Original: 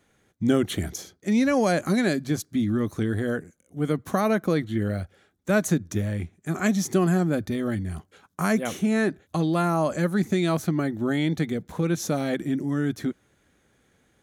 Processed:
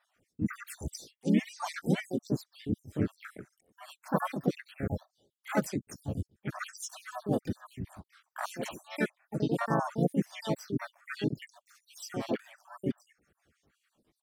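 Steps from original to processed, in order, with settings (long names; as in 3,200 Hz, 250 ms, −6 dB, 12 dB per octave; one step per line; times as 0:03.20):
time-frequency cells dropped at random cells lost 76%
pitch-shifted copies added −3 semitones −2 dB, +5 semitones −4 dB
level −6 dB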